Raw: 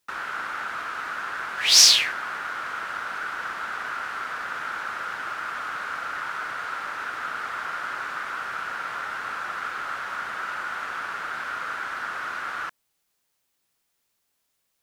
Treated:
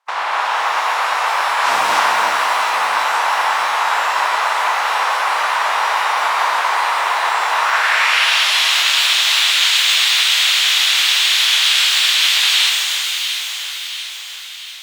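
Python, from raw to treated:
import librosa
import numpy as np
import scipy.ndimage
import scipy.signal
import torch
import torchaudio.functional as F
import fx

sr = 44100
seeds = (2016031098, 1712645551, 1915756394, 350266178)

p1 = fx.spec_clip(x, sr, under_db=27)
p2 = scipy.signal.sosfilt(scipy.signal.butter(2, 700.0, 'highpass', fs=sr, output='sos'), p1)
p3 = fx.fold_sine(p2, sr, drive_db=17, ceiling_db=-0.5)
p4 = fx.filter_sweep_bandpass(p3, sr, from_hz=940.0, to_hz=3500.0, start_s=7.54, end_s=8.36, q=2.5)
p5 = p4 + fx.echo_alternate(p4, sr, ms=345, hz=1800.0, feedback_pct=72, wet_db=-4.5, dry=0)
y = fx.rev_shimmer(p5, sr, seeds[0], rt60_s=2.0, semitones=12, shimmer_db=-8, drr_db=1.5)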